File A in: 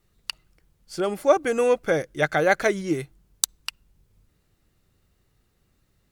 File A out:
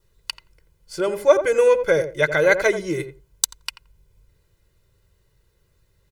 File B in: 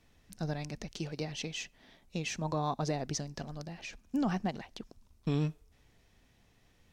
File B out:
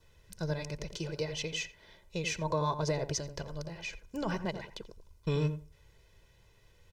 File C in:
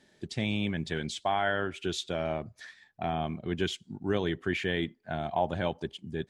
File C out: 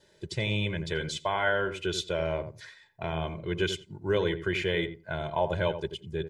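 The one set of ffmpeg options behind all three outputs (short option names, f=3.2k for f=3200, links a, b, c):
-filter_complex "[0:a]asplit=2[a][b];[b]adelay=86,lowpass=f=910:p=1,volume=-8dB,asplit=2[c][d];[d]adelay=86,lowpass=f=910:p=1,volume=0.16,asplit=2[e][f];[f]adelay=86,lowpass=f=910:p=1,volume=0.16[g];[c][e][g]amix=inputs=3:normalize=0[h];[a][h]amix=inputs=2:normalize=0,adynamicequalizer=threshold=0.00224:dfrequency=2200:dqfactor=7.4:tfrequency=2200:tqfactor=7.4:attack=5:release=100:ratio=0.375:range=2.5:mode=boostabove:tftype=bell,aecho=1:1:2:0.81"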